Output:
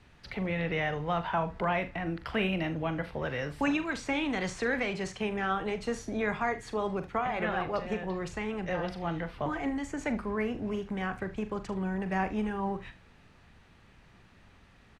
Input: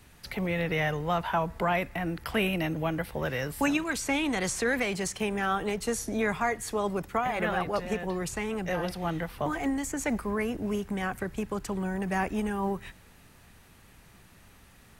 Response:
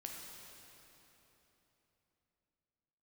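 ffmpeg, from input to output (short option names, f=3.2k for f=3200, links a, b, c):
-af "lowpass=4.2k,aecho=1:1:42|75:0.266|0.133,volume=-2.5dB"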